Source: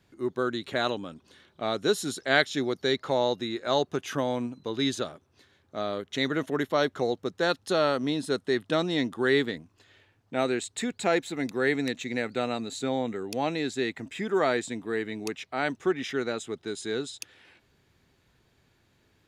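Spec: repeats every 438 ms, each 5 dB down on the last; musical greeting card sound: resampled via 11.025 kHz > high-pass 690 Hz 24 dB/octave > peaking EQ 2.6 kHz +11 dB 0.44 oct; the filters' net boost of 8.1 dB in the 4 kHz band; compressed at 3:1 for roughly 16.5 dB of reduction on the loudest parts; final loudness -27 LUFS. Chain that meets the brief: peaking EQ 4 kHz +6.5 dB; compression 3:1, threshold -40 dBFS; feedback delay 438 ms, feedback 56%, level -5 dB; resampled via 11.025 kHz; high-pass 690 Hz 24 dB/octave; peaking EQ 2.6 kHz +11 dB 0.44 oct; trim +12.5 dB

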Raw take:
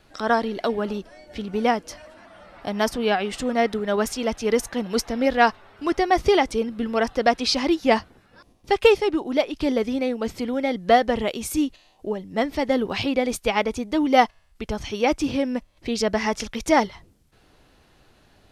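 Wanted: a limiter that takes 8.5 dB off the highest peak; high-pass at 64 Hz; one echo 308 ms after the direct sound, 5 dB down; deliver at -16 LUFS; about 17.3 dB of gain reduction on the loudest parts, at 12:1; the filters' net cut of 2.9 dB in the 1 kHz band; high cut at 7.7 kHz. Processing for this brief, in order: high-pass 64 Hz; low-pass 7.7 kHz; peaking EQ 1 kHz -4.5 dB; compression 12:1, threshold -28 dBFS; peak limiter -25 dBFS; delay 308 ms -5 dB; trim +18.5 dB

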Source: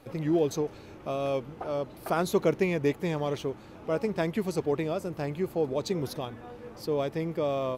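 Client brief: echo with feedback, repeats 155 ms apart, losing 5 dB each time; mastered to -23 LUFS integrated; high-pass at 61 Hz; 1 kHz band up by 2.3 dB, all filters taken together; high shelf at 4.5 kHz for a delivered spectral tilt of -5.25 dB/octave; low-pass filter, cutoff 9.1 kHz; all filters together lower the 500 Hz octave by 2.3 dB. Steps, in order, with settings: high-pass 61 Hz; low-pass 9.1 kHz; peaking EQ 500 Hz -4 dB; peaking EQ 1 kHz +4.5 dB; treble shelf 4.5 kHz +5 dB; feedback delay 155 ms, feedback 56%, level -5 dB; trim +7 dB

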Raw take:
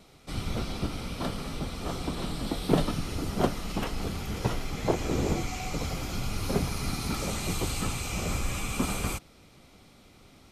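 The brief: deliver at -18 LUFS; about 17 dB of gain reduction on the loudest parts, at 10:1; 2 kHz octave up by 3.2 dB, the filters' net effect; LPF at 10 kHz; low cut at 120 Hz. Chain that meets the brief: high-pass 120 Hz; low-pass 10 kHz; peaking EQ 2 kHz +4 dB; compression 10:1, threshold -36 dBFS; trim +22 dB

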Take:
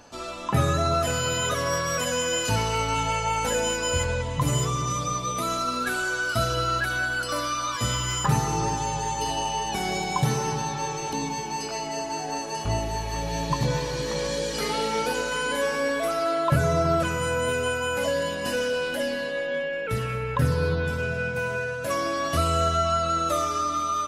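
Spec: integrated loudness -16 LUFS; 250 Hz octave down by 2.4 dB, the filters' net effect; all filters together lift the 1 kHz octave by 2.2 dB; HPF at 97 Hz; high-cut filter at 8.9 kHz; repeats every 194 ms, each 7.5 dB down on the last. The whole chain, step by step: high-pass 97 Hz; low-pass 8.9 kHz; peaking EQ 250 Hz -3.5 dB; peaking EQ 1 kHz +3 dB; feedback delay 194 ms, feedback 42%, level -7.5 dB; trim +8.5 dB

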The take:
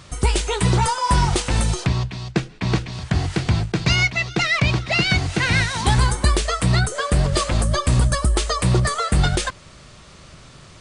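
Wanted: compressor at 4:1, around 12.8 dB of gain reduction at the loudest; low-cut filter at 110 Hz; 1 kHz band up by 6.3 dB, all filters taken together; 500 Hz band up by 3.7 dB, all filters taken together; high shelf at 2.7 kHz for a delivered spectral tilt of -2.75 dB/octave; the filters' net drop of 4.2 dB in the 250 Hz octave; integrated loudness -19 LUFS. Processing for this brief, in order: high-pass 110 Hz; peaking EQ 250 Hz -9 dB; peaking EQ 500 Hz +5.5 dB; peaking EQ 1 kHz +5.5 dB; treble shelf 2.7 kHz +7 dB; compression 4:1, threshold -27 dBFS; trim +9 dB

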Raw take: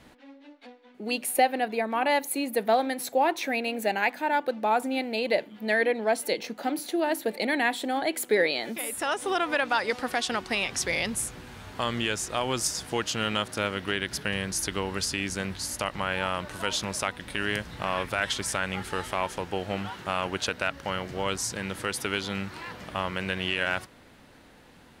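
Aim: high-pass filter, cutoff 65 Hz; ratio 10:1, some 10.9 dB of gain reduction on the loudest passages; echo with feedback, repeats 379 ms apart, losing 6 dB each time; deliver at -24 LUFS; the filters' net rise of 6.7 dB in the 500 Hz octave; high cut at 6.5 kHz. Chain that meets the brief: high-pass 65 Hz; low-pass 6.5 kHz; peaking EQ 500 Hz +8 dB; compression 10:1, threshold -24 dBFS; feedback delay 379 ms, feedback 50%, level -6 dB; trim +5.5 dB

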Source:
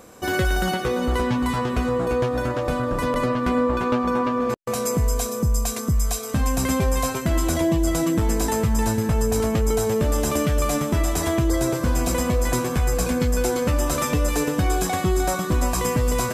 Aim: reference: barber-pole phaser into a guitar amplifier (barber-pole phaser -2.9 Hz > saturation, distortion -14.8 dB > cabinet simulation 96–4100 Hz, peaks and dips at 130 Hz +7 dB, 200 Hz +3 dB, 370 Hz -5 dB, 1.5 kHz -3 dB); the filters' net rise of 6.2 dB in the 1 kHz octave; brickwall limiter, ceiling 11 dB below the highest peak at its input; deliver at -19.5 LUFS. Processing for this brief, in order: peaking EQ 1 kHz +8 dB; peak limiter -18 dBFS; barber-pole phaser -2.9 Hz; saturation -25.5 dBFS; cabinet simulation 96–4100 Hz, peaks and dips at 130 Hz +7 dB, 200 Hz +3 dB, 370 Hz -5 dB, 1.5 kHz -3 dB; trim +13.5 dB

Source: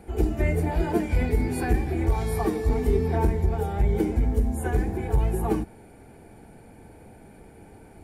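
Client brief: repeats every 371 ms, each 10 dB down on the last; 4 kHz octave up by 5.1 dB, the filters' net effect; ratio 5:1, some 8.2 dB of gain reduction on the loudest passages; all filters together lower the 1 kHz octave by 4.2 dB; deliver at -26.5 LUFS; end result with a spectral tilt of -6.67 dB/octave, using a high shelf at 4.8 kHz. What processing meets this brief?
peaking EQ 1 kHz -6 dB; peaking EQ 4 kHz +9 dB; treble shelf 4.8 kHz -4.5 dB; compression 5:1, threshold -26 dBFS; feedback delay 371 ms, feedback 32%, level -10 dB; trim +4.5 dB

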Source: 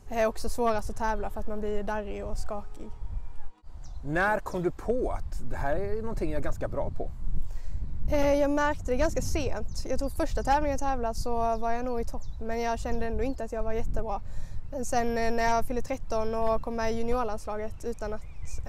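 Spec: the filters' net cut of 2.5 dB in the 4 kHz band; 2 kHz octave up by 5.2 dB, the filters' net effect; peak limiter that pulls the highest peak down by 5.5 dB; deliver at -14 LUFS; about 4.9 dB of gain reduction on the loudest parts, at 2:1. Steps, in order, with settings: peaking EQ 2 kHz +8 dB; peaking EQ 4 kHz -6.5 dB; compression 2:1, threshold -28 dBFS; trim +21.5 dB; peak limiter -1 dBFS

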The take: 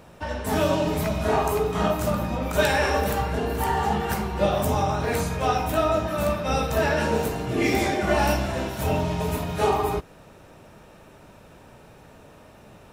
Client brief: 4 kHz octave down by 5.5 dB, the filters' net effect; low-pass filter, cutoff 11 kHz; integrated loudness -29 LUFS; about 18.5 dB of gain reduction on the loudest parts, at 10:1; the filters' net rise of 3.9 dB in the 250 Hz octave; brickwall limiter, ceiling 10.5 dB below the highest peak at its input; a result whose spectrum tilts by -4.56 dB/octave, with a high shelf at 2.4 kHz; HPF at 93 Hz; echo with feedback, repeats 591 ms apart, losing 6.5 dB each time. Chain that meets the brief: high-pass 93 Hz; low-pass 11 kHz; peaking EQ 250 Hz +5.5 dB; treble shelf 2.4 kHz -3 dB; peaking EQ 4 kHz -4.5 dB; compression 10:1, threshold -35 dBFS; peak limiter -35.5 dBFS; feedback delay 591 ms, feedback 47%, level -6.5 dB; trim +14.5 dB

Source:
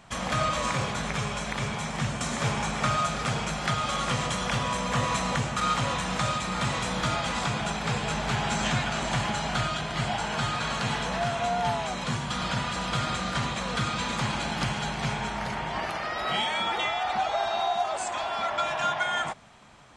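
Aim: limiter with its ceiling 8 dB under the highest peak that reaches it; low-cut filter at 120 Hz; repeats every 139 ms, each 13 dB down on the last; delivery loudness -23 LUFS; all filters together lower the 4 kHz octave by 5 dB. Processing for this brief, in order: high-pass 120 Hz; peaking EQ 4 kHz -6.5 dB; peak limiter -20.5 dBFS; feedback delay 139 ms, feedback 22%, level -13 dB; trim +7 dB

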